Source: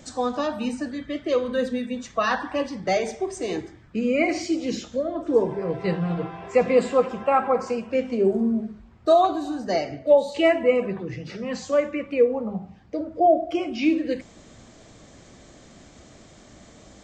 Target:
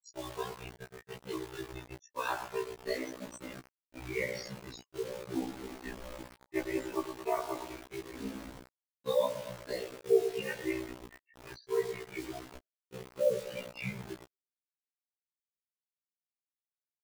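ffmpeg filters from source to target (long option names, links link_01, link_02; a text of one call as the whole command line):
ffmpeg -i in.wav -filter_complex "[0:a]asplit=2[link_01][link_02];[link_02]adelay=113,lowpass=frequency=3800:poles=1,volume=-10.5dB,asplit=2[link_03][link_04];[link_04]adelay=113,lowpass=frequency=3800:poles=1,volume=0.52,asplit=2[link_05][link_06];[link_06]adelay=113,lowpass=frequency=3800:poles=1,volume=0.52,asplit=2[link_07][link_08];[link_08]adelay=113,lowpass=frequency=3800:poles=1,volume=0.52,asplit=2[link_09][link_10];[link_10]adelay=113,lowpass=frequency=3800:poles=1,volume=0.52,asplit=2[link_11][link_12];[link_12]adelay=113,lowpass=frequency=3800:poles=1,volume=0.52[link_13];[link_03][link_05][link_07][link_09][link_11][link_13]amix=inputs=6:normalize=0[link_14];[link_01][link_14]amix=inputs=2:normalize=0,afreqshift=-150,afftfilt=real='re*gte(hypot(re,im),0.0398)':imag='im*gte(hypot(re,im),0.0398)':win_size=1024:overlap=0.75,bass=frequency=250:gain=-13,treble=frequency=4000:gain=-3,aecho=1:1:7.2:0.35,aeval=exprs='val(0)*sin(2*PI*30*n/s)':channel_layout=same,acrossover=split=1500[link_15][link_16];[link_15]acrusher=bits=5:mix=0:aa=0.000001[link_17];[link_16]aemphasis=mode=production:type=75kf[link_18];[link_17][link_18]amix=inputs=2:normalize=0,afftfilt=real='re*1.73*eq(mod(b,3),0)':imag='im*1.73*eq(mod(b,3),0)':win_size=2048:overlap=0.75,volume=-7dB" out.wav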